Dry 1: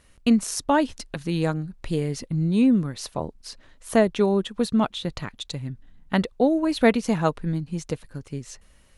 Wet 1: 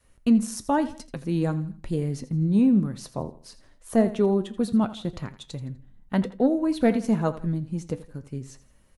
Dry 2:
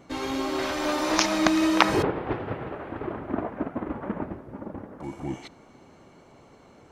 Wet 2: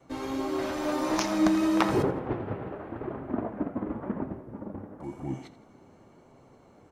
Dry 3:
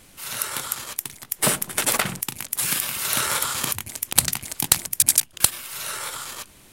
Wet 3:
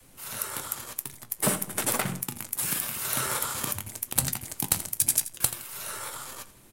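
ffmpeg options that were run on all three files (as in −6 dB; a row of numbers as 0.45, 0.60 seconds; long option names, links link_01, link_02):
-af "flanger=delay=7.5:depth=2.7:regen=75:speed=0.94:shape=sinusoidal,adynamicequalizer=threshold=0.0141:dfrequency=200:dqfactor=0.99:tfrequency=200:tqfactor=0.99:attack=5:release=100:ratio=0.375:range=2:mode=boostabove:tftype=bell,aecho=1:1:83|166|249:0.158|0.0571|0.0205,acontrast=75,equalizer=frequency=3400:width=0.47:gain=-6.5,volume=-5dB" -ar 44100 -c:a aac -b:a 192k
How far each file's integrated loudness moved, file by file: −1.0, −3.0, −6.0 LU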